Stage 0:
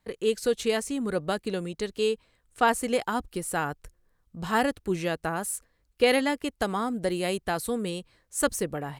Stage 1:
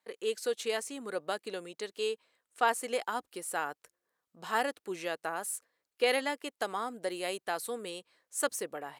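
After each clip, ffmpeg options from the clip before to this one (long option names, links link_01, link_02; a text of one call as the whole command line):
ffmpeg -i in.wav -af "highpass=430,volume=-4.5dB" out.wav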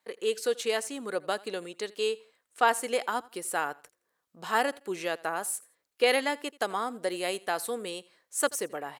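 ffmpeg -i in.wav -af "aecho=1:1:84|168:0.075|0.021,volume=4dB" out.wav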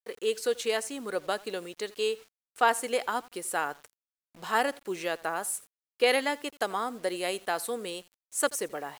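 ffmpeg -i in.wav -af "acrusher=bits=8:mix=0:aa=0.000001" out.wav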